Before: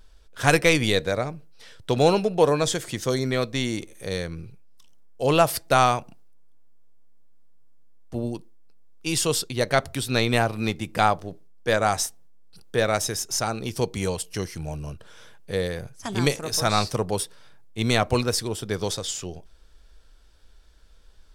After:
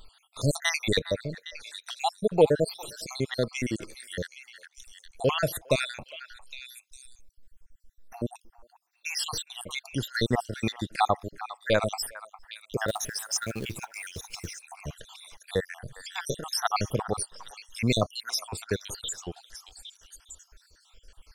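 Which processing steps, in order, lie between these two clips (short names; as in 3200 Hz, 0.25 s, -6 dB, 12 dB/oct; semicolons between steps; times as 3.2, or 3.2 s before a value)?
random spectral dropouts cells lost 71%; on a send: delay with a stepping band-pass 0.406 s, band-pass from 1200 Hz, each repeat 1.4 oct, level -11 dB; 12.88–14.61 on the sum: short-mantissa float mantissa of 2-bit; mismatched tape noise reduction encoder only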